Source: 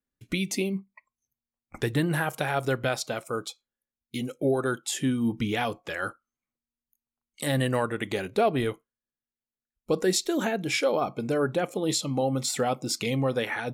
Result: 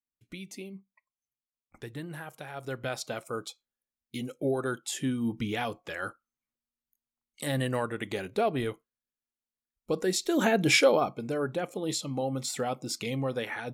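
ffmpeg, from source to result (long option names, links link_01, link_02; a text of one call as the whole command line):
ffmpeg -i in.wav -af "volume=6dB,afade=type=in:start_time=2.53:duration=0.57:silence=0.316228,afade=type=in:start_time=10.19:duration=0.5:silence=0.316228,afade=type=out:start_time=10.69:duration=0.48:silence=0.281838" out.wav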